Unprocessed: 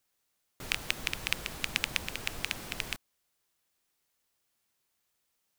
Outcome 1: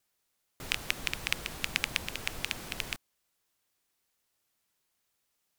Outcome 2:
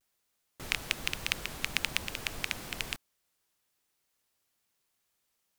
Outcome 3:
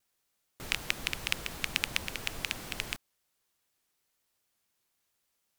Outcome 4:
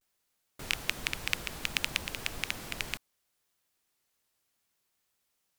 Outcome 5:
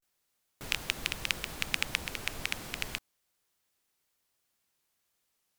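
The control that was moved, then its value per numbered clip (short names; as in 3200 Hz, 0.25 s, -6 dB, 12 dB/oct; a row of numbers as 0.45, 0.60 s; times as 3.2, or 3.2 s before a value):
vibrato, rate: 14, 1.1, 4.1, 0.65, 0.33 Hz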